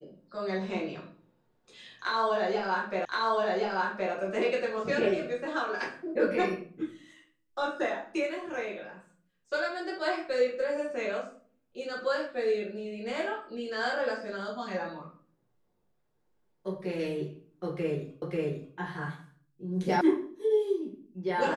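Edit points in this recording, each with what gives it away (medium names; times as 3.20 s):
3.05 s: repeat of the last 1.07 s
18.22 s: repeat of the last 0.54 s
20.01 s: sound stops dead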